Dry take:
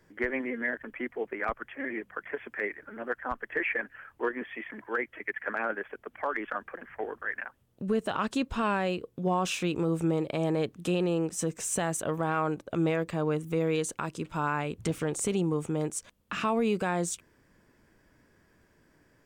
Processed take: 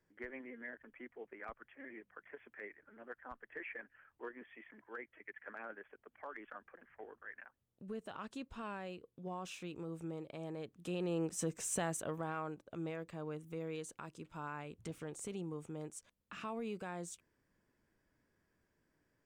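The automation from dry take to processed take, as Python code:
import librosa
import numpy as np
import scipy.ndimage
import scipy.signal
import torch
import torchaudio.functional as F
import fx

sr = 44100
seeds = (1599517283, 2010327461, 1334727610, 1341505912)

y = fx.gain(x, sr, db=fx.line((10.65, -16.5), (11.23, -7.0), (11.82, -7.0), (12.61, -15.0)))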